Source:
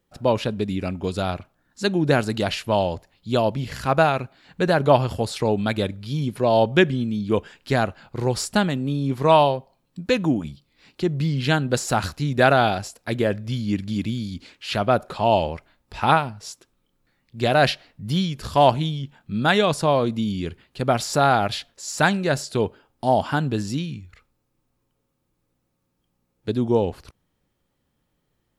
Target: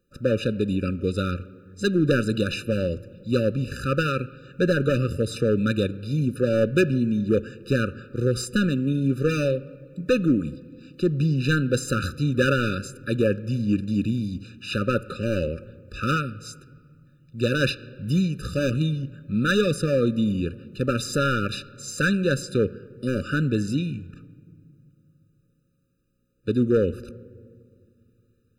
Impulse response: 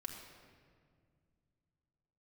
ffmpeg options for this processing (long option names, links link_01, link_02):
-filter_complex "[0:a]volume=15dB,asoftclip=hard,volume=-15dB,asplit=2[link_01][link_02];[1:a]atrim=start_sample=2205,lowpass=3100[link_03];[link_02][link_03]afir=irnorm=-1:irlink=0,volume=-10dB[link_04];[link_01][link_04]amix=inputs=2:normalize=0,afftfilt=real='re*eq(mod(floor(b*sr/1024/590),2),0)':imag='im*eq(mod(floor(b*sr/1024/590),2),0)':win_size=1024:overlap=0.75"